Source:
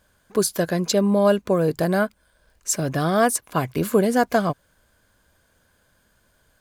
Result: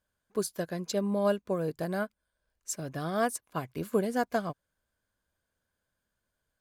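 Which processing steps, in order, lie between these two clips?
expander for the loud parts 1.5 to 1, over −37 dBFS
level −8.5 dB

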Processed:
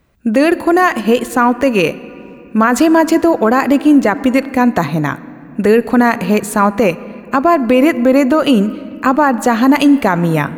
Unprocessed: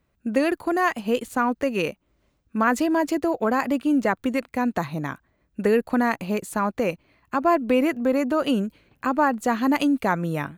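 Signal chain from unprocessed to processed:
on a send at −17 dB: convolution reverb RT60 2.8 s, pre-delay 3 ms
on the sum: boost into a limiter +13.5 dB
level −1 dB

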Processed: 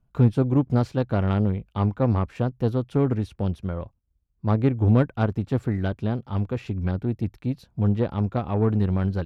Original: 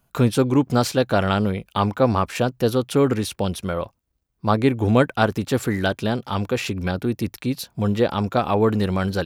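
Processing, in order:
RIAA equalisation playback
harmonic generator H 7 −27 dB, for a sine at 3 dBFS
level −9 dB

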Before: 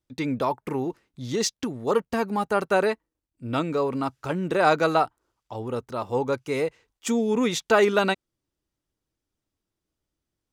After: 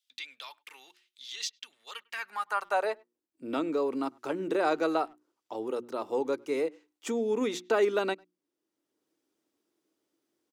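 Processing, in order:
mains-hum notches 60/120/180/240/300/360 Hz
high-pass filter sweep 3,300 Hz → 320 Hz, 0:01.91–0:03.23
far-end echo of a speakerphone 100 ms, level −28 dB
multiband upward and downward compressor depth 40%
level −8.5 dB

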